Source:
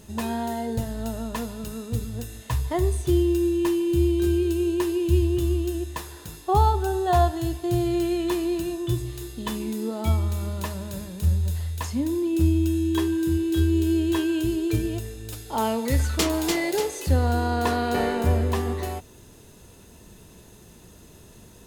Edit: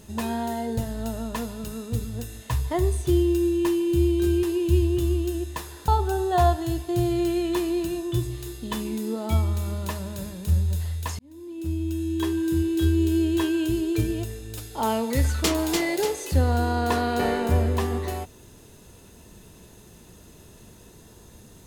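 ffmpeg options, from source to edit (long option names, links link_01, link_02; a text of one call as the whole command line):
ffmpeg -i in.wav -filter_complex "[0:a]asplit=4[link_01][link_02][link_03][link_04];[link_01]atrim=end=4.432[link_05];[link_02]atrim=start=4.828:end=6.282[link_06];[link_03]atrim=start=6.628:end=11.94,asetpts=PTS-STARTPTS,afade=type=out:start_time=5.308:duration=0.004:curve=hsin[link_07];[link_04]atrim=start=11.94,asetpts=PTS-STARTPTS,afade=type=in:duration=1.35[link_08];[link_05][link_06]acrossfade=duration=0.004:curve1=hsin:curve2=hsin[link_09];[link_07][link_08]concat=n=2:v=0:a=1[link_10];[link_09][link_10]acrossfade=duration=0.004:curve1=hsin:curve2=hsin" out.wav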